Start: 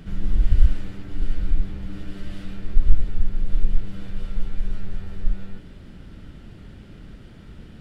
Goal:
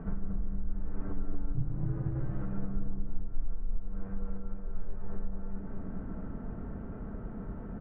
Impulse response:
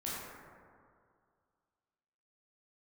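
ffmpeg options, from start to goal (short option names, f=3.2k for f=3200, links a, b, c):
-filter_complex "[0:a]lowpass=f=1.2k:w=0.5412,lowpass=f=1.2k:w=1.3066,lowshelf=f=480:g=-9,aecho=1:1:4.5:0.32,acompressor=threshold=-35dB:ratio=12,asplit=3[a][b][c];[a]afade=t=out:st=1.54:d=0.02[d];[b]aeval=exprs='val(0)*sin(2*PI*130*n/s)':c=same,afade=t=in:st=1.54:d=0.02,afade=t=out:st=2.19:d=0.02[e];[c]afade=t=in:st=2.19:d=0.02[f];[d][e][f]amix=inputs=3:normalize=0,asplit=2[g][h];[h]adelay=230,lowpass=f=810:p=1,volume=-3.5dB,asplit=2[i][j];[j]adelay=230,lowpass=f=810:p=1,volume=0.51,asplit=2[k][l];[l]adelay=230,lowpass=f=810:p=1,volume=0.51,asplit=2[m][n];[n]adelay=230,lowpass=f=810:p=1,volume=0.51,asplit=2[o][p];[p]adelay=230,lowpass=f=810:p=1,volume=0.51,asplit=2[q][r];[r]adelay=230,lowpass=f=810:p=1,volume=0.51,asplit=2[s][t];[t]adelay=230,lowpass=f=810:p=1,volume=0.51[u];[g][i][k][m][o][q][s][u]amix=inputs=8:normalize=0,asplit=2[v][w];[1:a]atrim=start_sample=2205,asetrate=29547,aresample=44100[x];[w][x]afir=irnorm=-1:irlink=0,volume=-14dB[y];[v][y]amix=inputs=2:normalize=0,volume=6.5dB"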